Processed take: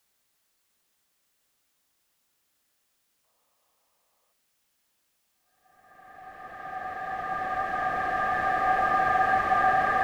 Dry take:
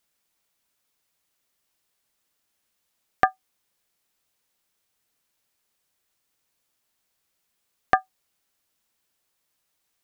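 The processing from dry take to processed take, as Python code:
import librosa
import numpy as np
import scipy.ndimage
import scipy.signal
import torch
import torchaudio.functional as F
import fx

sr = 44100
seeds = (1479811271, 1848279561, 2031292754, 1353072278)

y = fx.paulstretch(x, sr, seeds[0], factor=8.3, window_s=1.0, from_s=2.07)
y = fx.spec_box(y, sr, start_s=3.24, length_s=1.09, low_hz=440.0, high_hz=1300.0, gain_db=10)
y = F.gain(torch.from_numpy(y), 2.5).numpy()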